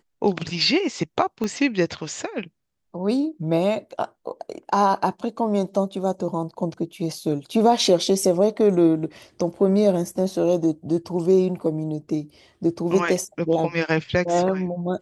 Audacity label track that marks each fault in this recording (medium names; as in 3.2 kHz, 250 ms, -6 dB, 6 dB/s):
1.440000	1.440000	pop -14 dBFS